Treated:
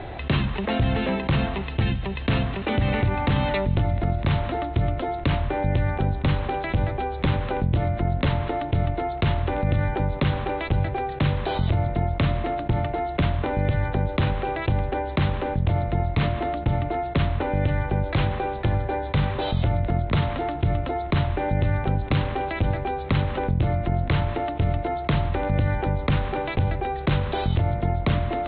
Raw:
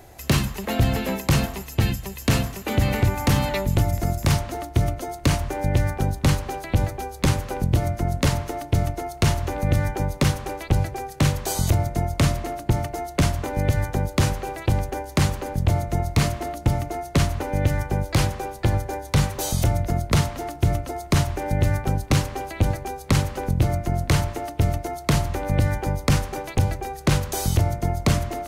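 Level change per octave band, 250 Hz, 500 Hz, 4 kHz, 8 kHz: -1.0 dB, +1.0 dB, -3.5 dB, under -40 dB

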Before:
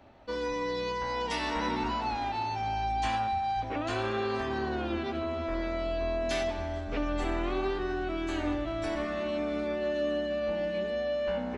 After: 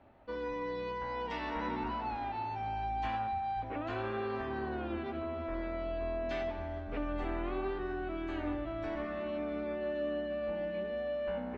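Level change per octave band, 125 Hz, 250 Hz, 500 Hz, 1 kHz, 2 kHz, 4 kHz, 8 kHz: -5.0 dB, -5.0 dB, -5.0 dB, -5.0 dB, -6.5 dB, -11.5 dB, under -20 dB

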